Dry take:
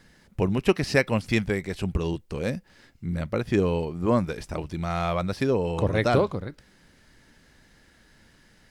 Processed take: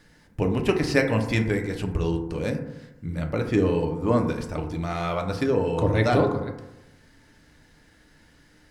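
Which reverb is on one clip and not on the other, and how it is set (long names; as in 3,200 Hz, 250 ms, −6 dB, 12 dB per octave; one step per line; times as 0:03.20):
feedback delay network reverb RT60 0.98 s, low-frequency decay 1.1×, high-frequency decay 0.3×, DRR 3 dB
level −1 dB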